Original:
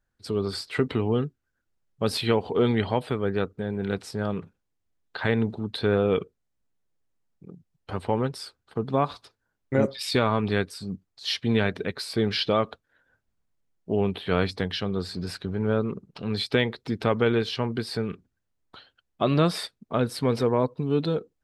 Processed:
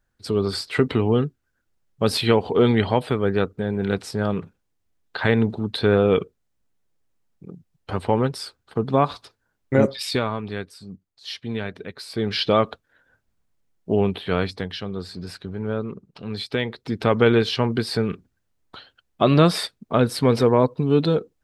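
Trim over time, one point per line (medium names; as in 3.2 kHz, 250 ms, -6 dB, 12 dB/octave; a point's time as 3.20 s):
9.93 s +5 dB
10.43 s -5.5 dB
11.91 s -5.5 dB
12.54 s +5 dB
13.93 s +5 dB
14.73 s -2 dB
16.56 s -2 dB
17.24 s +6 dB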